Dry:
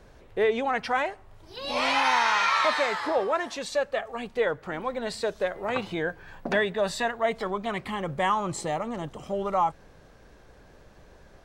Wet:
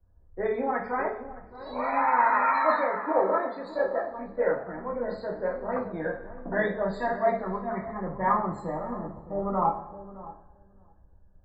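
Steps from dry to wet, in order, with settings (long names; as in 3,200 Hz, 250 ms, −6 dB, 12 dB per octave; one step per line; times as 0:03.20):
moving average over 15 samples
spectral peaks only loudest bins 64
feedback echo with a low-pass in the loop 616 ms, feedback 30%, low-pass 870 Hz, level −8 dB
convolution reverb, pre-delay 3 ms, DRR −2.5 dB
multiband upward and downward expander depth 70%
level −3.5 dB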